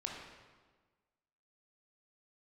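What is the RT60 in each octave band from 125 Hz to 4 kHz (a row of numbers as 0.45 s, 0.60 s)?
1.5 s, 1.5 s, 1.4 s, 1.4 s, 1.2 s, 1.1 s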